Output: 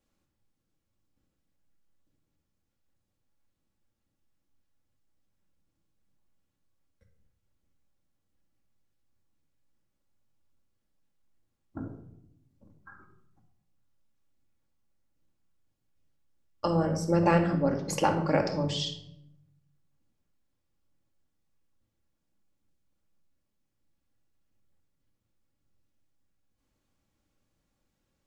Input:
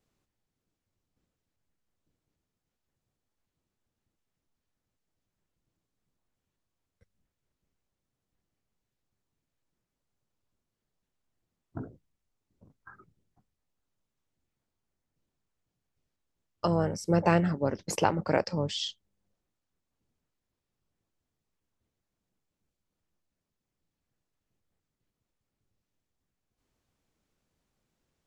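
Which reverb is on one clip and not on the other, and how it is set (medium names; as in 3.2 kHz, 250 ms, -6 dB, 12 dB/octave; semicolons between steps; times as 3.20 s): simulated room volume 2100 m³, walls furnished, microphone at 2.3 m; trim -1.5 dB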